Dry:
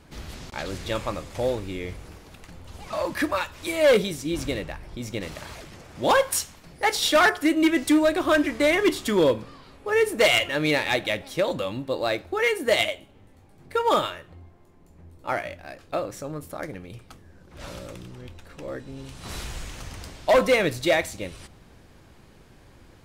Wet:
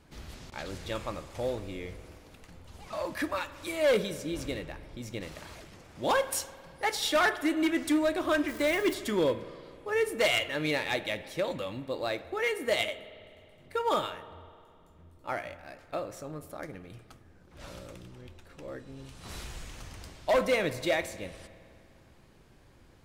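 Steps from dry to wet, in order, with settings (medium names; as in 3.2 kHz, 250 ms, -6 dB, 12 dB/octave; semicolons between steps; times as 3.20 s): 8.48–8.94 s: zero-crossing glitches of -30 dBFS; spring tank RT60 2.3 s, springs 51 ms, chirp 60 ms, DRR 14.5 dB; trim -7 dB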